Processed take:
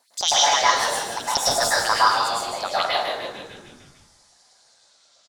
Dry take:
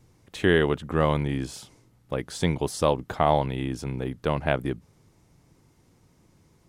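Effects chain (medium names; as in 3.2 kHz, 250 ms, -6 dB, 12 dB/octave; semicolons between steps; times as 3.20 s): gliding tape speed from 198% -> 55%; high-order bell 6.3 kHz +12 dB; LFO high-pass saw up 9.5 Hz 620–5800 Hz; frequency-shifting echo 149 ms, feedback 58%, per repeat -96 Hz, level -7 dB; plate-style reverb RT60 0.82 s, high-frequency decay 0.5×, pre-delay 95 ms, DRR -7 dB; trim -4.5 dB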